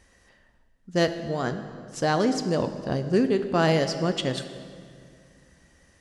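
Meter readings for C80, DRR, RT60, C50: 11.0 dB, 8.5 dB, 2.2 s, 10.0 dB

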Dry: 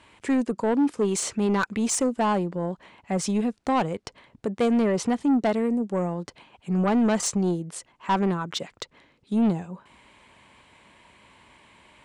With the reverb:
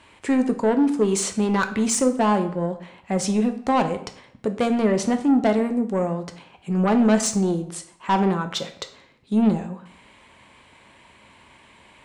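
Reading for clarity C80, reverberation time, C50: 14.5 dB, 0.60 s, 12.0 dB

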